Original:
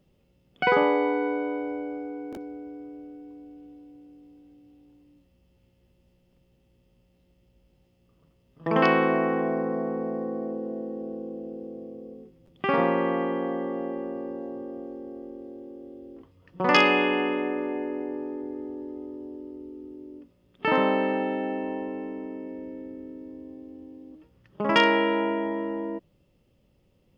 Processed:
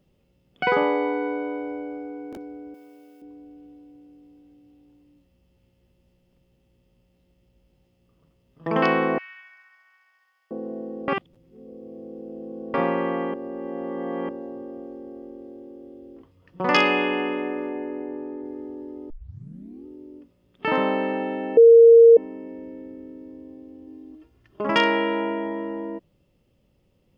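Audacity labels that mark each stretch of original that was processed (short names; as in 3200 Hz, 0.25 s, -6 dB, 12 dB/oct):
2.740000	3.220000	tilt +4.5 dB/oct
9.180000	10.510000	inverse Chebyshev high-pass stop band from 460 Hz, stop band 70 dB
11.080000	12.740000	reverse
13.340000	14.290000	reverse
17.690000	18.450000	air absorption 140 m
19.100000	19.100000	tape start 0.76 s
21.570000	22.170000	bleep 462 Hz -7 dBFS
23.870000	24.670000	comb 2.9 ms, depth 64%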